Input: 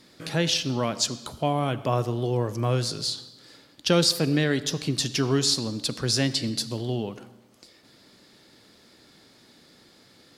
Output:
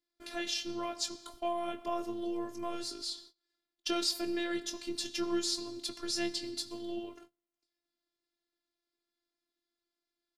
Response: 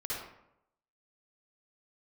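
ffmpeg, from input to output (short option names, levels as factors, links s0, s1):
-filter_complex "[0:a]agate=range=0.0562:threshold=0.00708:ratio=16:detection=peak,asplit=2[s0][s1];[s1]adelay=22,volume=0.335[s2];[s0][s2]amix=inputs=2:normalize=0,afftfilt=real='hypot(re,im)*cos(PI*b)':imag='0':win_size=512:overlap=0.75,volume=0.447"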